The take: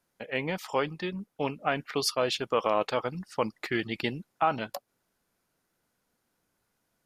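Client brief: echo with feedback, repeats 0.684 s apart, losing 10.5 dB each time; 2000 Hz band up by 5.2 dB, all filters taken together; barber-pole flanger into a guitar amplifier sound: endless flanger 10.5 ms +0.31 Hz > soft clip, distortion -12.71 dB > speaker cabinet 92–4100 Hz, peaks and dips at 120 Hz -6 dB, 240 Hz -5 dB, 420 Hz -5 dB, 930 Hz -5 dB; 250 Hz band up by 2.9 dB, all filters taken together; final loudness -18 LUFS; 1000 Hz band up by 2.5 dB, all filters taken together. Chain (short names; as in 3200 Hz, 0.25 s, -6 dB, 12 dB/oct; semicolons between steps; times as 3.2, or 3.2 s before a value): bell 250 Hz +7.5 dB; bell 1000 Hz +4 dB; bell 2000 Hz +5.5 dB; feedback echo 0.684 s, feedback 30%, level -10.5 dB; endless flanger 10.5 ms +0.31 Hz; soft clip -21.5 dBFS; speaker cabinet 92–4100 Hz, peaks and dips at 120 Hz -6 dB, 240 Hz -5 dB, 420 Hz -5 dB, 930 Hz -5 dB; gain +16 dB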